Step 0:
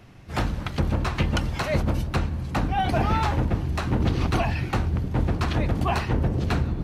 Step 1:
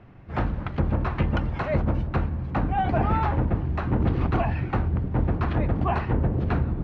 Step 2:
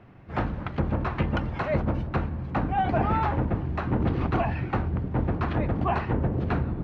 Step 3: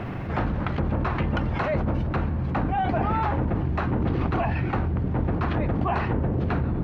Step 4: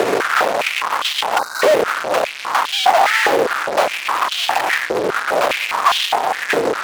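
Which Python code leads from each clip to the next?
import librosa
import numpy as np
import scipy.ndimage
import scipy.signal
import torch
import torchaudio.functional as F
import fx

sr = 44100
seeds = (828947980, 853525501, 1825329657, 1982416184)

y1 = scipy.signal.sosfilt(scipy.signal.butter(2, 1800.0, 'lowpass', fs=sr, output='sos'), x)
y2 = fx.low_shelf(y1, sr, hz=74.0, db=-8.0)
y3 = fx.env_flatten(y2, sr, amount_pct=70)
y3 = y3 * librosa.db_to_amplitude(-1.5)
y4 = fx.fuzz(y3, sr, gain_db=45.0, gate_db=-45.0)
y4 = fx.spec_box(y4, sr, start_s=1.39, length_s=0.23, low_hz=1600.0, high_hz=3700.0, gain_db=-25)
y4 = fx.filter_held_highpass(y4, sr, hz=4.9, low_hz=450.0, high_hz=3200.0)
y4 = y4 * librosa.db_to_amplitude(-2.0)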